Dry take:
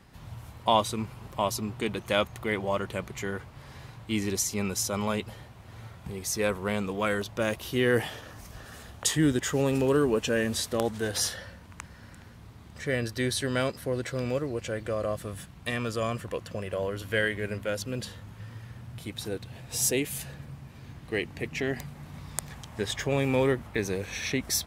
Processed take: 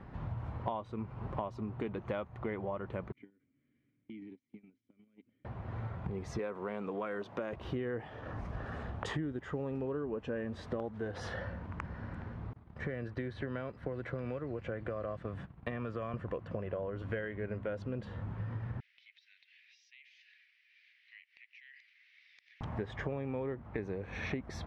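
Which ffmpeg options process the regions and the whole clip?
ffmpeg -i in.wav -filter_complex "[0:a]asettb=1/sr,asplit=3[link_01][link_02][link_03];[link_01]atrim=end=3.124[link_04];[link_02]atrim=start=3.12:end=5.45,asetpts=PTS-STARTPTS,afade=type=in:duration=0.004:curve=qsin,afade=type=out:start_time=2.326:duration=0.004:curve=qsin,acompressor=threshold=-38dB:ratio=10:attack=3.2:release=140:knee=1:detection=peak,asplit=3[link_05][link_06][link_07];[link_05]bandpass=frequency=270:width_type=q:width=8,volume=0dB[link_08];[link_06]bandpass=frequency=2290:width_type=q:width=8,volume=-6dB[link_09];[link_07]bandpass=frequency=3010:width_type=q:width=8,volume=-9dB[link_10];[link_08][link_09][link_10]amix=inputs=3:normalize=0,agate=range=-19dB:threshold=-55dB:ratio=16:release=100:detection=peak[link_11];[link_03]atrim=start=5.446[link_12];[link_04][link_11]acrossfade=duration=0.004:curve1=hsin:curve2=qsin[link_13];[link_13][link_12]acrossfade=duration=0.004:curve1=qsin:curve2=hsin,asettb=1/sr,asplit=3[link_14][link_15][link_16];[link_14]atrim=end=6.394[link_17];[link_15]atrim=start=6.39:end=7.53,asetpts=PTS-STARTPTS,afade=type=in:duration=0.004:curve=qsin,afade=type=out:start_time=1.136:duration=0.004:curve=qsin,highpass=230,acompressor=threshold=-32dB:ratio=1.5:attack=3.2:release=140:knee=1:detection=peak,highshelf=frequency=5300:gain=6.5[link_18];[link_16]atrim=start=7.526[link_19];[link_17][link_18]acrossfade=duration=0.004:curve1=hsin:curve2=qsin[link_20];[link_20][link_19]acrossfade=duration=0.004:curve1=qsin:curve2=hsin,asettb=1/sr,asplit=3[link_21][link_22][link_23];[link_21]atrim=end=12.534[link_24];[link_22]atrim=start=12.53:end=16.14,asetpts=PTS-STARTPTS,afade=type=in:duration=0.004:curve=qsin,afade=type=out:start_time=3.606:duration=0.004:curve=qsin,agate=range=-33dB:threshold=-40dB:ratio=3:release=100:detection=peak,acrossover=split=110|1300|3300|7600[link_25][link_26][link_27][link_28][link_29];[link_25]acompressor=threshold=-49dB:ratio=3[link_30];[link_26]acompressor=threshold=-37dB:ratio=3[link_31];[link_27]acompressor=threshold=-40dB:ratio=3[link_32];[link_28]acompressor=threshold=-55dB:ratio=3[link_33];[link_29]acompressor=threshold=-58dB:ratio=3[link_34];[link_30][link_31][link_32][link_33][link_34]amix=inputs=5:normalize=0[link_35];[link_23]atrim=start=16.136[link_36];[link_24][link_35]acrossfade=duration=0.004:curve1=hsin:curve2=qsin[link_37];[link_37][link_36]acrossfade=duration=0.004:curve1=qsin:curve2=hsin,asettb=1/sr,asplit=3[link_38][link_39][link_40];[link_38]atrim=end=18.804[link_41];[link_39]atrim=start=18.8:end=22.61,asetpts=PTS-STARTPTS,afade=type=in:duration=0.004:curve=qsin,afade=type=out:start_time=3.806:duration=0.004:curve=qsin,asuperpass=centerf=3500:order=12:qfactor=0.86,acompressor=threshold=-53dB:ratio=4:attack=3.2:release=140:knee=1:detection=peak[link_42];[link_40]atrim=start=22.606[link_43];[link_41][link_42]acrossfade=duration=0.004:curve1=hsin:curve2=qsin[link_44];[link_44][link_43]acrossfade=duration=0.004:curve1=qsin:curve2=hsin,lowpass=1400,acompressor=threshold=-41dB:ratio=10,volume=6.5dB" out.wav

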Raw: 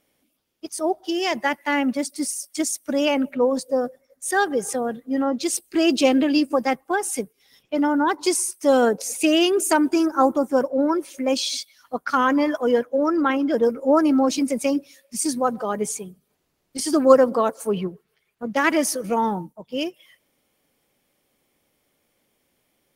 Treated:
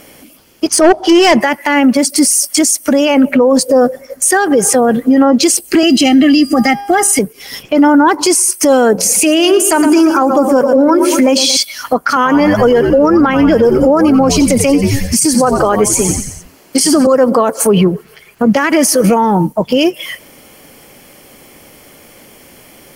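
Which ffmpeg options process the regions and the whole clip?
ffmpeg -i in.wav -filter_complex "[0:a]asettb=1/sr,asplit=3[link_01][link_02][link_03];[link_01]atrim=end=0.674[link_04];[link_02]atrim=start=0.67:end=1.41,asetpts=PTS-STARTPTS,afade=type=in:duration=0.004:curve=qsin,afade=type=out:start_time=0.736:duration=0.004:curve=qsin,volume=21dB,asoftclip=hard,volume=-21dB,adynamicsmooth=sensitivity=3:basefreq=7300[link_05];[link_03]atrim=start=1.406[link_06];[link_04][link_05]acrossfade=duration=0.004:curve1=hsin:curve2=qsin[link_07];[link_07][link_06]acrossfade=duration=0.004:curve1=qsin:curve2=hsin,asettb=1/sr,asplit=3[link_08][link_09][link_10];[link_08]atrim=end=5.834[link_11];[link_09]atrim=start=5.83:end=7.19,asetpts=PTS-STARTPTS,afade=type=in:duration=0.004:curve=qsin,afade=type=out:start_time=1.356:duration=0.004:curve=qsin,asuperstop=centerf=970:order=8:qfactor=2.5,aecho=1:1:1:0.74,atrim=end_sample=59976,bandreject=frequency=404:width_type=h:width=4,bandreject=frequency=808:width_type=h:width=4,bandreject=frequency=1212:width_type=h:width=4,bandreject=frequency=1616:width_type=h:width=4,bandreject=frequency=2020:width_type=h:width=4,bandreject=frequency=2424:width_type=h:width=4,bandreject=frequency=2828:width_type=h:width=4,bandreject=frequency=3232:width_type=h:width=4,bandreject=frequency=3636:width_type=h:width=4,bandreject=frequency=4040:width_type=h:width=4,bandreject=frequency=4444:width_type=h:width=4,bandreject=frequency=4848:width_type=h:width=4,bandreject=frequency=5252:width_type=h:width=4,bandreject=frequency=5656:width_type=h:width=4,bandreject=frequency=6060:width_type=h:width=4,bandreject=frequency=6464:width_type=h:width=4[link_12];[link_10]atrim=start=7.186[link_13];[link_11][link_12]acrossfade=duration=0.004:curve1=hsin:curve2=qsin[link_14];[link_14][link_13]acrossfade=duration=0.004:curve1=qsin:curve2=hsin,asettb=1/sr,asplit=3[link_15][link_16][link_17];[link_15]atrim=end=8.934[link_18];[link_16]atrim=start=8.93:end=11.57,asetpts=PTS-STARTPTS,afade=type=in:duration=0.004:curve=qsin,afade=type=out:start_time=2.636:duration=0.004:curve=qsin,bandreject=frequency=60:width_type=h:width=6,bandreject=frequency=120:width_type=h:width=6,bandreject=frequency=180:width_type=h:width=6,bandreject=frequency=240:width_type=h:width=6,bandreject=frequency=300:width_type=h:width=6,bandreject=frequency=360:width_type=h:width=6,bandreject=frequency=420:width_type=h:width=6,bandreject=frequency=480:width_type=h:width=6,bandreject=frequency=540:width_type=h:width=6,aecho=1:1:115|230|345|460:0.211|0.0909|0.0391|0.0168,atrim=end_sample=116424[link_19];[link_17]atrim=start=11.566[link_20];[link_18][link_19]acrossfade=duration=0.004:curve1=hsin:curve2=qsin[link_21];[link_21][link_20]acrossfade=duration=0.004:curve1=qsin:curve2=hsin,asettb=1/sr,asplit=3[link_22][link_23][link_24];[link_22]atrim=end=12.164[link_25];[link_23]atrim=start=12.16:end=17.07,asetpts=PTS-STARTPTS,afade=type=in:duration=0.004:curve=qsin,afade=type=out:start_time=4.906:duration=0.004:curve=qsin,highpass=230,asplit=6[link_26][link_27][link_28][link_29][link_30][link_31];[link_27]adelay=89,afreqshift=-90,volume=-12dB[link_32];[link_28]adelay=178,afreqshift=-180,volume=-17.7dB[link_33];[link_29]adelay=267,afreqshift=-270,volume=-23.4dB[link_34];[link_30]adelay=356,afreqshift=-360,volume=-29dB[link_35];[link_31]adelay=445,afreqshift=-450,volume=-34.7dB[link_36];[link_26][link_32][link_33][link_34][link_35][link_36]amix=inputs=6:normalize=0,atrim=end_sample=216531[link_37];[link_24]atrim=start=17.066[link_38];[link_25][link_37]acrossfade=duration=0.004:curve1=hsin:curve2=qsin[link_39];[link_39][link_38]acrossfade=duration=0.004:curve1=qsin:curve2=hsin,bandreject=frequency=3700:width=7.2,acompressor=threshold=-31dB:ratio=6,alimiter=level_in=30.5dB:limit=-1dB:release=50:level=0:latency=1,volume=-1dB" out.wav

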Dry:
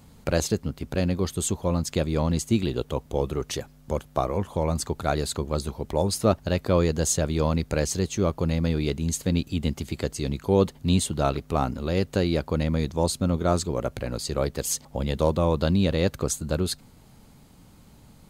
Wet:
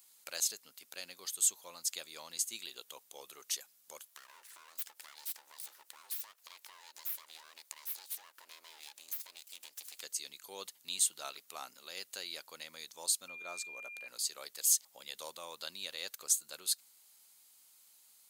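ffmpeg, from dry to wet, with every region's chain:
ffmpeg -i in.wav -filter_complex "[0:a]asettb=1/sr,asplit=3[link_01][link_02][link_03];[link_01]atrim=end=4.074[link_04];[link_02]atrim=start=4.07:end=10.01,asetpts=PTS-STARTPTS,afade=type=in:duration=0.004:curve=qsin,afade=type=out:start_time=5.936:duration=0.004:curve=qsin,lowshelf=frequency=350:width_type=q:width=3:gain=-7,aeval=exprs='abs(val(0))':channel_layout=same,acompressor=threshold=-30dB:ratio=16:attack=3.2:release=140:knee=1:detection=peak[link_05];[link_03]atrim=start=10.006[link_06];[link_04][link_05]acrossfade=duration=0.004:curve1=hsin:curve2=qsin[link_07];[link_07][link_06]acrossfade=duration=0.004:curve1=qsin:curve2=hsin,asettb=1/sr,asplit=3[link_08][link_09][link_10];[link_08]atrim=end=13.284[link_11];[link_09]atrim=start=13.28:end=14.08,asetpts=PTS-STARTPTS,afade=type=in:duration=0.004:curve=qsin,afade=type=out:start_time=0.796:duration=0.004:curve=qsin,highshelf=frequency=2300:gain=-10,aeval=exprs='val(0)+0.0178*sin(2*PI*2400*n/s)':channel_layout=same[link_12];[link_10]atrim=start=14.076[link_13];[link_11][link_12]acrossfade=duration=0.004:curve1=hsin:curve2=qsin[link_14];[link_14][link_13]acrossfade=duration=0.004:curve1=qsin:curve2=hsin,highpass=frequency=670:poles=1,aderivative" out.wav

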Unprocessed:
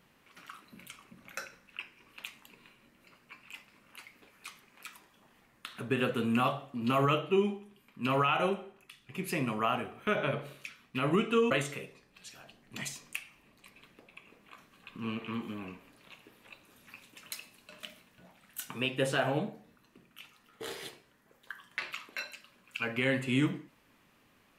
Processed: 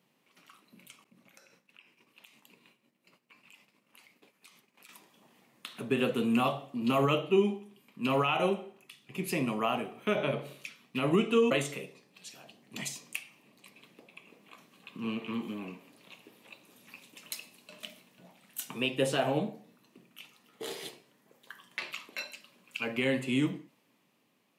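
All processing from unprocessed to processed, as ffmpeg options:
ffmpeg -i in.wav -filter_complex "[0:a]asettb=1/sr,asplit=3[link_01][link_02][link_03];[link_01]atrim=end=1.044[link_04];[link_02]atrim=start=1.04:end=4.89,asetpts=PTS-STARTPTS,afade=type=in:duration=0.004:curve=qsin,afade=type=out:start_time=3.846:duration=0.004:curve=qsin,agate=range=-33dB:threshold=-56dB:ratio=3:release=100:detection=peak,acompressor=threshold=-55dB:ratio=4:attack=3.2:release=140:knee=1:detection=peak[link_05];[link_03]atrim=start=4.886[link_06];[link_04][link_05]acrossfade=duration=0.004:curve1=hsin:curve2=qsin[link_07];[link_07][link_06]acrossfade=duration=0.004:curve1=qsin:curve2=hsin,highpass=frequency=140:width=0.5412,highpass=frequency=140:width=1.3066,equalizer=frequency=1500:width=1.8:gain=-8,dynaudnorm=framelen=230:gausssize=11:maxgain=7.5dB,volume=-5dB" out.wav

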